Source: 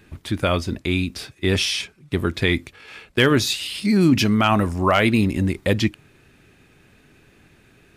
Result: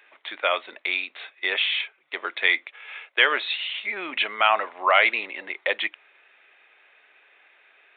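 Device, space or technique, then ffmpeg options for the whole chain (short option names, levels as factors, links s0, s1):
musical greeting card: -af "aresample=8000,aresample=44100,highpass=f=590:w=0.5412,highpass=f=590:w=1.3066,equalizer=f=2100:t=o:w=0.35:g=6"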